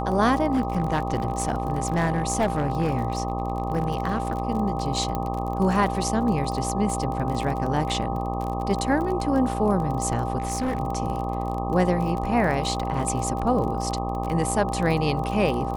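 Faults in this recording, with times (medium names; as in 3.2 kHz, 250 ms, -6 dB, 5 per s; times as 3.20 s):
buzz 60 Hz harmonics 21 -29 dBFS
crackle 33 per s -29 dBFS
whine 790 Hz -30 dBFS
0.51–4.42 s: clipped -17 dBFS
5.15 s: pop -14 dBFS
10.38–10.80 s: clipped -21.5 dBFS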